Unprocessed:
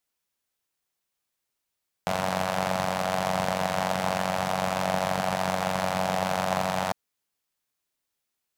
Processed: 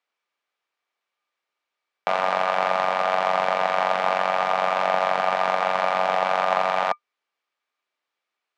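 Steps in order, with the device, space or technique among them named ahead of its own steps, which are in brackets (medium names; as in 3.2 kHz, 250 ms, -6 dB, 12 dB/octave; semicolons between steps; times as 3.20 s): tin-can telephone (band-pass 460–3000 Hz; small resonant body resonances 1.2/2.3 kHz, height 11 dB, ringing for 95 ms); trim +6 dB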